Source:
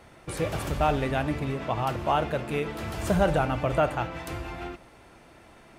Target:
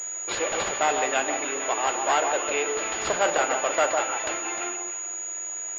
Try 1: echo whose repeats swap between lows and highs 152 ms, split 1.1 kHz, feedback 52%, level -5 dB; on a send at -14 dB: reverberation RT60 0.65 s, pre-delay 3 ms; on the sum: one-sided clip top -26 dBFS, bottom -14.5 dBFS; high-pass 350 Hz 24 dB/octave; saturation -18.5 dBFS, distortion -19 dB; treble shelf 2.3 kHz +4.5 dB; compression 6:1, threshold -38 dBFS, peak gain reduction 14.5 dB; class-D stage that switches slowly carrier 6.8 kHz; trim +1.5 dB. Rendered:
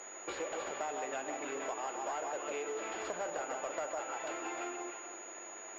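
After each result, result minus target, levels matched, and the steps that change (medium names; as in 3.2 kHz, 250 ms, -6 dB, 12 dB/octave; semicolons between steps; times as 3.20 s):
compression: peak gain reduction +14.5 dB; saturation: distortion +10 dB; 4 kHz band -3.0 dB
remove: compression 6:1, threshold -38 dBFS, peak gain reduction 14.5 dB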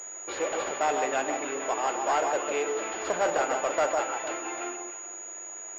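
saturation: distortion +10 dB; 4 kHz band -4.0 dB
change: saturation -12 dBFS, distortion -29 dB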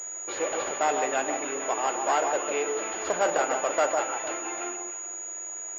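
4 kHz band -5.0 dB
change: treble shelf 2.3 kHz +16 dB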